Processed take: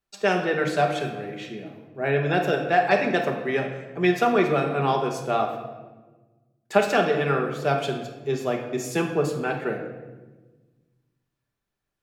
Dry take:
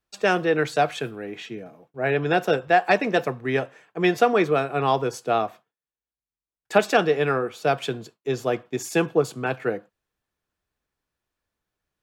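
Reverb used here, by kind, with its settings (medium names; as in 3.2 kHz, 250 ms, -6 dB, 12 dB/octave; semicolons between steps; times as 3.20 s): simulated room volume 870 m³, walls mixed, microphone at 1.2 m; trim -3 dB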